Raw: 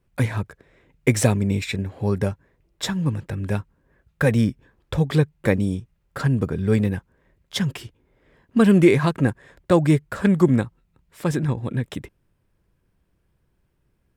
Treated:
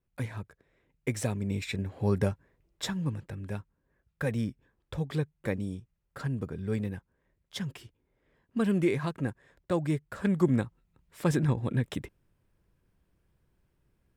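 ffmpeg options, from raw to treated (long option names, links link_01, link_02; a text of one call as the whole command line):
ffmpeg -i in.wav -af "volume=4.5dB,afade=type=in:start_time=1.28:duration=0.88:silence=0.354813,afade=type=out:start_time=2.16:duration=1.29:silence=0.398107,afade=type=in:start_time=10.01:duration=1.29:silence=0.375837" out.wav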